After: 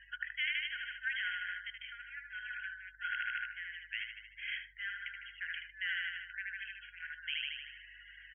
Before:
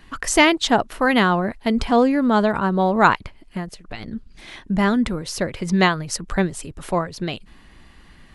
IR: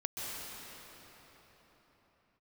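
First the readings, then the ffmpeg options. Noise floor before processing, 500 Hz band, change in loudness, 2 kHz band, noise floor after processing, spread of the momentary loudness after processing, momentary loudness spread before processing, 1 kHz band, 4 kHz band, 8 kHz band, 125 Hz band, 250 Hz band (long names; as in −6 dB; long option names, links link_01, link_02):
−49 dBFS, below −40 dB, −20.0 dB, −11.0 dB, −58 dBFS, 10 LU, 17 LU, −29.5 dB, −13.5 dB, below −40 dB, below −40 dB, below −40 dB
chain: -filter_complex "[0:a]aecho=1:1:76|152|228|304|380|456|532|608:0.562|0.332|0.196|0.115|0.0681|0.0402|0.0237|0.014,asoftclip=type=tanh:threshold=-4.5dB,areverse,acompressor=threshold=-29dB:ratio=12,areverse,asoftclip=type=hard:threshold=-27.5dB[link_01];[1:a]atrim=start_sample=2205,atrim=end_sample=3087,asetrate=31311,aresample=44100[link_02];[link_01][link_02]afir=irnorm=-1:irlink=0,afftfilt=real='re*between(b*sr/4096,1400,3300)':imag='im*between(b*sr/4096,1400,3300)':win_size=4096:overlap=0.75,aeval=exprs='val(0)+0.000447*(sin(2*PI*50*n/s)+sin(2*PI*2*50*n/s)/2+sin(2*PI*3*50*n/s)/3+sin(2*PI*4*50*n/s)/4+sin(2*PI*5*50*n/s)/5)':channel_layout=same,afftdn=noise_reduction=29:noise_floor=-53,volume=3.5dB"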